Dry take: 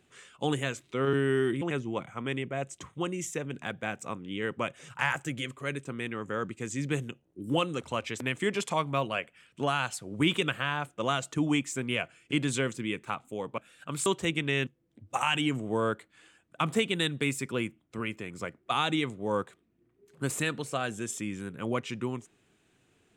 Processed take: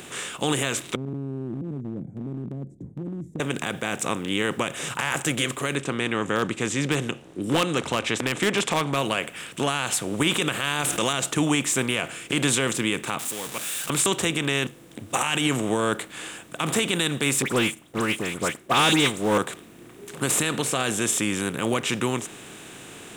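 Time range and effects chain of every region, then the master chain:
0:00.95–0:03.40: inverse Chebyshev low-pass filter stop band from 1,100 Hz, stop band 70 dB + downward compressor 3 to 1, threshold −40 dBFS
0:05.75–0:08.96: high-frequency loss of the air 96 metres + hard clipping −21.5 dBFS
0:10.60–0:11.13: parametric band 12,000 Hz +11.5 dB 2.9 octaves + envelope flattener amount 50%
0:13.19–0:13.90: converter with a step at zero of −41 dBFS + first-order pre-emphasis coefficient 0.9
0:17.42–0:19.38: all-pass dispersion highs, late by 79 ms, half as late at 2,500 Hz + leveller curve on the samples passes 1 + expander for the loud parts, over −39 dBFS
whole clip: compressor on every frequency bin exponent 0.6; high-shelf EQ 4,500 Hz +9.5 dB; brickwall limiter −14 dBFS; level +3 dB

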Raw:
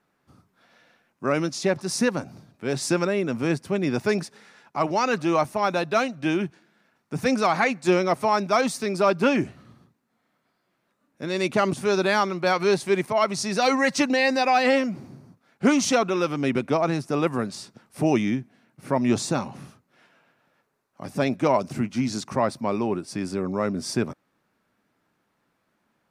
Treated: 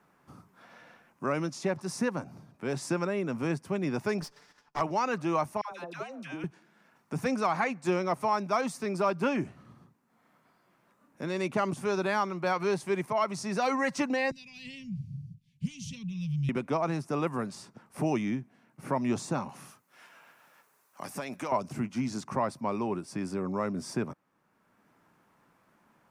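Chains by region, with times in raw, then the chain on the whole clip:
0:04.21–0:04.81: lower of the sound and its delayed copy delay 6.8 ms + noise gate −54 dBFS, range −12 dB + parametric band 5,000 Hz +12 dB 0.7 octaves
0:05.61–0:06.44: high-pass filter 310 Hz 6 dB per octave + downward compressor 12 to 1, threshold −31 dBFS + all-pass dispersion lows, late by 106 ms, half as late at 820 Hz
0:14.31–0:16.49: elliptic band-stop filter 150–3,000 Hz + spectral tilt −3.5 dB per octave
0:19.49–0:21.52: spectral tilt +3.5 dB per octave + downward compressor, threshold −27 dBFS
whole clip: graphic EQ with 15 bands 160 Hz +3 dB, 1,000 Hz +5 dB, 4,000 Hz −5 dB; multiband upward and downward compressor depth 40%; level −8 dB

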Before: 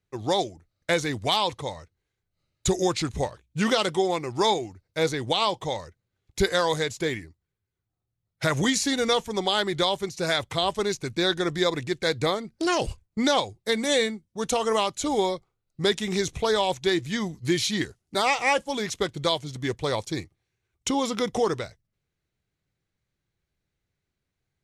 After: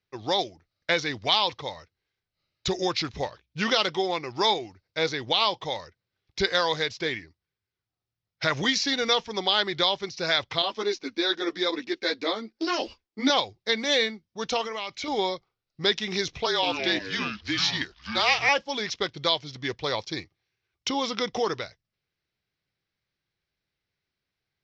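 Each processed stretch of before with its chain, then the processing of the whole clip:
0:10.62–0:13.30: low shelf with overshoot 190 Hz −11 dB, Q 3 + string-ensemble chorus
0:14.61–0:15.08: parametric band 2,200 Hz +12 dB 0.27 octaves + downward compressor 12 to 1, threshold −27 dBFS
0:16.46–0:18.49: low-shelf EQ 310 Hz −8 dB + frequency shifter −36 Hz + delay with pitch and tempo change per echo 162 ms, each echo −6 semitones, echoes 2, each echo −6 dB
whole clip: elliptic low-pass filter 5,400 Hz, stop band 50 dB; spectral tilt +2 dB per octave

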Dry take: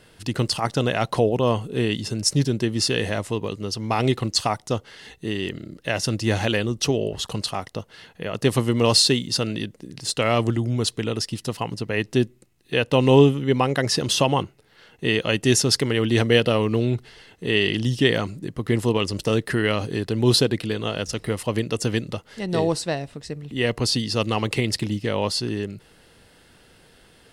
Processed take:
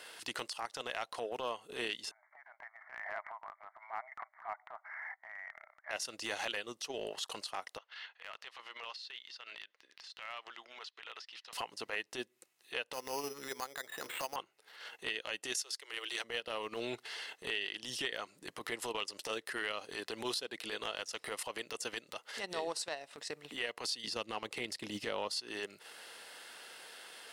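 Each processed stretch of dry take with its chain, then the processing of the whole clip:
0:02.11–0:05.91: downward compressor 10 to 1, threshold −30 dBFS + linear-phase brick-wall band-pass 600–2,300 Hz
0:07.78–0:11.53: Bessel high-pass filter 1,500 Hz + downward compressor 8 to 1, threshold −40 dBFS + high-frequency loss of the air 250 metres
0:12.93–0:14.36: transistor ladder low-pass 2,200 Hz, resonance 45% + mains-hum notches 60/120/180/240/300/360/420/480 Hz + bad sample-rate conversion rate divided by 8×, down none, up hold
0:15.54–0:16.24: Butterworth high-pass 310 Hz 96 dB per octave + tilt shelving filter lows −5.5 dB, about 1,100 Hz
0:24.04–0:25.36: low-shelf EQ 400 Hz +12 dB + one half of a high-frequency compander encoder only
whole clip: high-pass filter 720 Hz 12 dB per octave; downward compressor 12 to 1, threshold −37 dBFS; transient designer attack −12 dB, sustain −8 dB; level +5.5 dB

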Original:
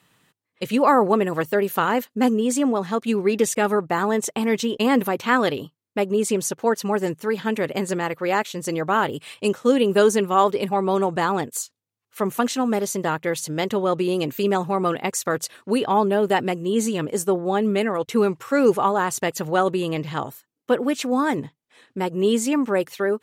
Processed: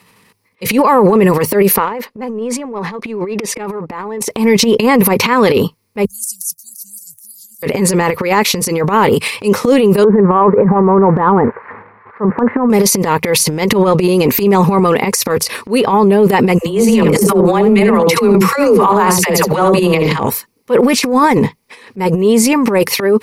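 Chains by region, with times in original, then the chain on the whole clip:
0:01.76–0:04.21: low-pass filter 1,200 Hz 6 dB per octave + parametric band 110 Hz −13.5 dB 2.8 octaves + downward compressor 16 to 1, threshold −30 dBFS
0:06.05–0:07.63: inverse Chebyshev band-stop filter 320–2,300 Hz, stop band 60 dB + first-order pre-emphasis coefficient 0.97
0:10.04–0:12.70: spike at every zero crossing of −21.5 dBFS + Butterworth low-pass 1,700 Hz 48 dB per octave
0:16.58–0:20.19: all-pass dispersion lows, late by 88 ms, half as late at 440 Hz + single-tap delay 72 ms −10 dB
whole clip: EQ curve with evenly spaced ripples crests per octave 0.87, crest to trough 9 dB; transient designer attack −12 dB, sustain +12 dB; boost into a limiter +12 dB; level −1 dB

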